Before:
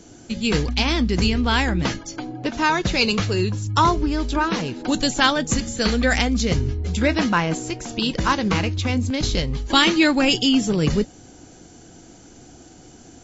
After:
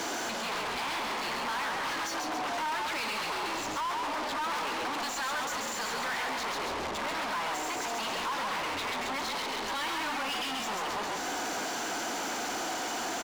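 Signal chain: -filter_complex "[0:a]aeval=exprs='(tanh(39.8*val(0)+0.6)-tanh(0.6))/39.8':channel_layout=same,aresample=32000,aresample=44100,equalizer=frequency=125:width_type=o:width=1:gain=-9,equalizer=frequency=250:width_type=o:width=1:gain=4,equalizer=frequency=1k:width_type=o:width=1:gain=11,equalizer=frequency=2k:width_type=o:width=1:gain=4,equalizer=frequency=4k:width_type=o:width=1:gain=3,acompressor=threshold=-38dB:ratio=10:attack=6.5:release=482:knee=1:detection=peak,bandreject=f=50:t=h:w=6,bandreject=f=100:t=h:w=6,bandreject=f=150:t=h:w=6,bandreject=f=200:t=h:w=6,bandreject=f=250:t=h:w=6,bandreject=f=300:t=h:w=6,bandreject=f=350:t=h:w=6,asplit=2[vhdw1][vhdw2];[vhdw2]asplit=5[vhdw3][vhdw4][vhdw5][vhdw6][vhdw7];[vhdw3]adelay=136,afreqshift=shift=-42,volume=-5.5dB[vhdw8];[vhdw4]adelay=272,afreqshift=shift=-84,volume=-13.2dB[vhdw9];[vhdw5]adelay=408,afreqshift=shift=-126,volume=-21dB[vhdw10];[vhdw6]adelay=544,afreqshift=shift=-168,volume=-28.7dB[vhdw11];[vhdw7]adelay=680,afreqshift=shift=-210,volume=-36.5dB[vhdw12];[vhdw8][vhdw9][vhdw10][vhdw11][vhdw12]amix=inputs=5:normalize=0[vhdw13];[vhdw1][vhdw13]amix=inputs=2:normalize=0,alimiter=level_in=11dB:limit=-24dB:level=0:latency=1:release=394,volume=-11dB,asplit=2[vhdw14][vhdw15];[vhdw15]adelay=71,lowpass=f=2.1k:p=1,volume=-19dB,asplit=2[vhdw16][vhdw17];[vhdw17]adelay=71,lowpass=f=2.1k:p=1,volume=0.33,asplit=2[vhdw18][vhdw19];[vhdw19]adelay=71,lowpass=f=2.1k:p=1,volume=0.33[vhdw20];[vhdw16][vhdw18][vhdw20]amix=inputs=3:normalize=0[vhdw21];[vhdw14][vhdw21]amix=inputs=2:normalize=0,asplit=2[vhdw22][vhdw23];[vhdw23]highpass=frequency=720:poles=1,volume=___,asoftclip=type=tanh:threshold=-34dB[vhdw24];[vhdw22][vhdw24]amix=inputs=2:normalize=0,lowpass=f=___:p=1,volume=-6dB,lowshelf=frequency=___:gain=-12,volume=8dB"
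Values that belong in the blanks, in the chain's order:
33dB, 3.6k, 180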